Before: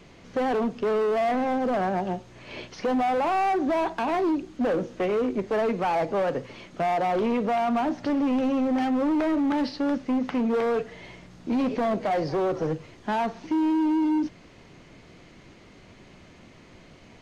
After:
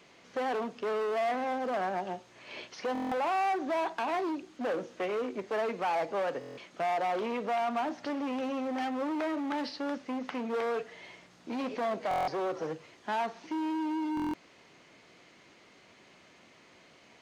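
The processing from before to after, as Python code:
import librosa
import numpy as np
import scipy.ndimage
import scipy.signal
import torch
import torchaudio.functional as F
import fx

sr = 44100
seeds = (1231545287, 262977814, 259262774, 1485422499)

y = fx.highpass(x, sr, hz=620.0, slope=6)
y = fx.buffer_glitch(y, sr, at_s=(2.93, 6.39, 12.09, 14.15), block=1024, repeats=7)
y = F.gain(torch.from_numpy(y), -3.0).numpy()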